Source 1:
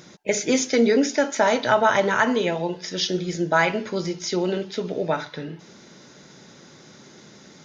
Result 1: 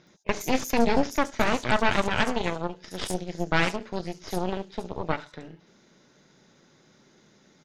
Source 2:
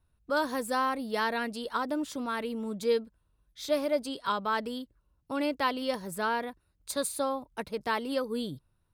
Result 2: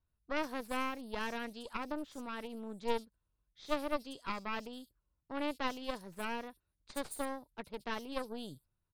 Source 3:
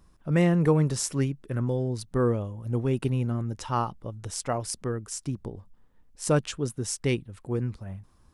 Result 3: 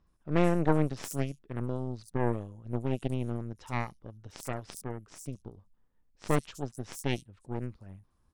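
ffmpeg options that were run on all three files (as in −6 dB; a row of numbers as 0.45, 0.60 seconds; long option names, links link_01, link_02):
-filter_complex "[0:a]aeval=exprs='0.447*(cos(1*acos(clip(val(0)/0.447,-1,1)))-cos(1*PI/2))+0.0708*(cos(3*acos(clip(val(0)/0.447,-1,1)))-cos(3*PI/2))+0.178*(cos(4*acos(clip(val(0)/0.447,-1,1)))-cos(4*PI/2))':channel_layout=same,acrossover=split=5600[link_01][link_02];[link_02]adelay=70[link_03];[link_01][link_03]amix=inputs=2:normalize=0,volume=-5.5dB"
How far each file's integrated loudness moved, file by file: −5.5, −8.5, −5.5 LU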